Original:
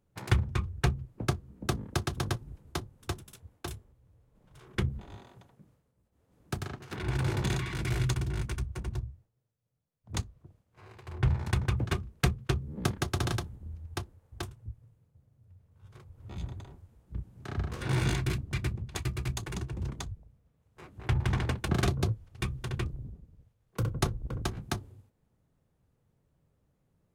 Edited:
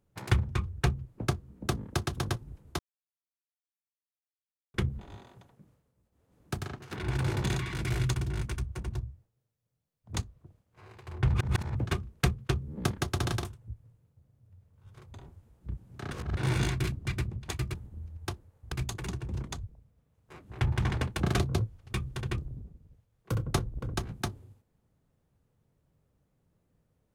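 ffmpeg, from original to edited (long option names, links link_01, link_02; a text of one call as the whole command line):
ffmpeg -i in.wav -filter_complex "[0:a]asplit=11[link_01][link_02][link_03][link_04][link_05][link_06][link_07][link_08][link_09][link_10][link_11];[link_01]atrim=end=2.79,asetpts=PTS-STARTPTS,afade=type=out:start_time=2.786:duration=0.004:curve=hsin[link_12];[link_02]atrim=start=2.79:end=4.74,asetpts=PTS-STARTPTS,volume=0[link_13];[link_03]atrim=start=4.74:end=11.342,asetpts=PTS-STARTPTS,afade=type=in:duration=0.004:curve=hsin[link_14];[link_04]atrim=start=11.338:end=11.752,asetpts=PTS-STARTPTS,areverse[link_15];[link_05]atrim=start=11.748:end=13.432[link_16];[link_06]atrim=start=14.408:end=16.122[link_17];[link_07]atrim=start=16.598:end=17.572[link_18];[link_08]atrim=start=17.568:end=17.832,asetpts=PTS-STARTPTS,areverse[link_19];[link_09]atrim=start=17.828:end=19.202[link_20];[link_10]atrim=start=13.428:end=14.412[link_21];[link_11]atrim=start=19.198[link_22];[link_12][link_13][link_14]concat=n=3:v=0:a=1[link_23];[link_23][link_15]acrossfade=duration=0.004:curve1=hsin:curve2=hsin[link_24];[link_24][link_16]acrossfade=duration=0.004:curve1=hsin:curve2=hsin[link_25];[link_25][link_17]acrossfade=duration=0.004:curve1=hsin:curve2=hsin[link_26];[link_26][link_18]acrossfade=duration=0.004:curve1=hsin:curve2=hsin[link_27];[link_27][link_19]acrossfade=duration=0.004:curve1=hsin:curve2=hsin[link_28];[link_28][link_20]acrossfade=duration=0.004:curve1=hsin:curve2=hsin[link_29];[link_29][link_21]acrossfade=duration=0.004:curve1=hsin:curve2=hsin[link_30];[link_30][link_22]acrossfade=duration=0.004:curve1=hsin:curve2=hsin" out.wav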